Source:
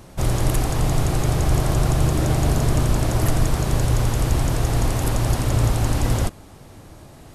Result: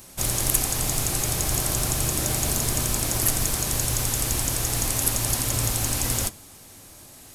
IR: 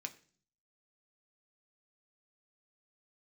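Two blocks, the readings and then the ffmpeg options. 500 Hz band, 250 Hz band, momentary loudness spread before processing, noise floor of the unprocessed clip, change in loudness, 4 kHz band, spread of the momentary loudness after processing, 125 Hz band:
−7.0 dB, −8.0 dB, 2 LU, −44 dBFS, −1.5 dB, +3.5 dB, 2 LU, −9.5 dB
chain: -filter_complex "[0:a]crystalizer=i=5:c=0,acrusher=bits=5:mode=log:mix=0:aa=0.000001,asplit=2[link_01][link_02];[1:a]atrim=start_sample=2205[link_03];[link_02][link_03]afir=irnorm=-1:irlink=0,volume=-1.5dB[link_04];[link_01][link_04]amix=inputs=2:normalize=0,volume=-10.5dB"

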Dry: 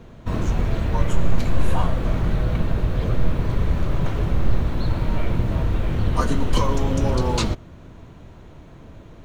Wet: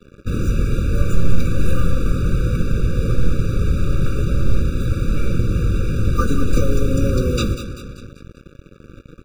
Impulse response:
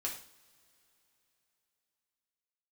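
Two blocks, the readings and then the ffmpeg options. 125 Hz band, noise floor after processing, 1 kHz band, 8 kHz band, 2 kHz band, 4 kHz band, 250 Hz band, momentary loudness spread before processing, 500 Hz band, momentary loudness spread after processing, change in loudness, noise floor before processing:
+3.5 dB, −47 dBFS, −4.0 dB, can't be measured, +2.0 dB, −0.5 dB, +3.5 dB, 3 LU, +2.5 dB, 4 LU, +3.0 dB, −44 dBFS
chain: -af "aecho=1:1:195|390|585|780|975:0.282|0.141|0.0705|0.0352|0.0176,acrusher=bits=5:mix=0:aa=0.5,afftfilt=real='re*eq(mod(floor(b*sr/1024/570),2),0)':imag='im*eq(mod(floor(b*sr/1024/570),2),0)':win_size=1024:overlap=0.75,volume=3dB"

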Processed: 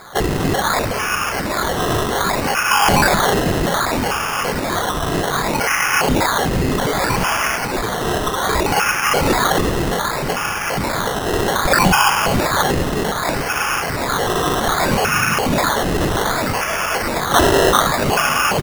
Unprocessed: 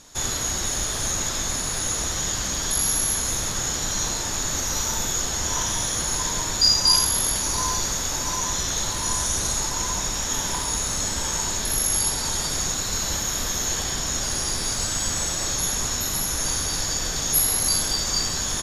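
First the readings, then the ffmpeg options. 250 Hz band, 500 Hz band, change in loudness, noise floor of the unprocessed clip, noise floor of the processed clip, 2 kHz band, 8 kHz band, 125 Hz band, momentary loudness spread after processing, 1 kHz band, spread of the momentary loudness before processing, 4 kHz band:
+14.5 dB, +17.0 dB, +5.0 dB, −28 dBFS, −22 dBFS, +14.5 dB, −5.0 dB, +10.0 dB, 7 LU, +15.5 dB, 5 LU, +1.5 dB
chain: -filter_complex "[0:a]afftfilt=real='re*pow(10,7/40*sin(2*PI*(1.2*log(max(b,1)*sr/1024/100)/log(2)-(0.33)*(pts-256)/sr)))':imag='im*pow(10,7/40*sin(2*PI*(1.2*log(max(b,1)*sr/1024/100)/log(2)-(0.33)*(pts-256)/sr)))':win_size=1024:overlap=0.75,highpass=frequency=79:poles=1,aemphasis=mode=reproduction:type=75kf,aecho=1:1:3.2:0.88,alimiter=limit=-20.5dB:level=0:latency=1:release=244,asplit=6[link_01][link_02][link_03][link_04][link_05][link_06];[link_02]adelay=104,afreqshift=-110,volume=-9dB[link_07];[link_03]adelay=208,afreqshift=-220,volume=-15.4dB[link_08];[link_04]adelay=312,afreqshift=-330,volume=-21.8dB[link_09];[link_05]adelay=416,afreqshift=-440,volume=-28.1dB[link_10];[link_06]adelay=520,afreqshift=-550,volume=-34.5dB[link_11];[link_01][link_07][link_08][link_09][link_10][link_11]amix=inputs=6:normalize=0,aexciter=amount=14.6:drive=8.6:freq=5000,acrusher=samples=15:mix=1:aa=0.000001:lfo=1:lforange=9:lforate=0.64,volume=-7dB"

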